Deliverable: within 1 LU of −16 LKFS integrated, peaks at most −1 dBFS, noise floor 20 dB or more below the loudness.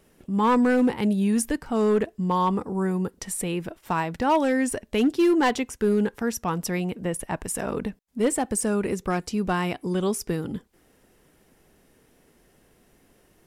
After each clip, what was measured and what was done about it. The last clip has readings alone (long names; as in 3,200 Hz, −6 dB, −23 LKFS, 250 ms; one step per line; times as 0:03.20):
share of clipped samples 0.9%; peaks flattened at −15.0 dBFS; integrated loudness −25.0 LKFS; sample peak −15.0 dBFS; target loudness −16.0 LKFS
→ clipped peaks rebuilt −15 dBFS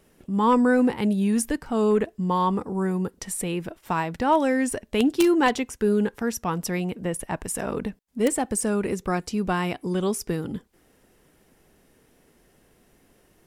share of clipped samples 0.0%; integrated loudness −24.5 LKFS; sample peak −6.0 dBFS; target loudness −16.0 LKFS
→ level +8.5 dB
brickwall limiter −1 dBFS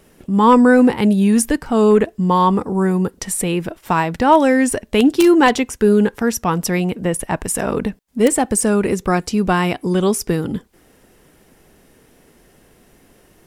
integrated loudness −16.5 LKFS; sample peak −1.0 dBFS; background noise floor −53 dBFS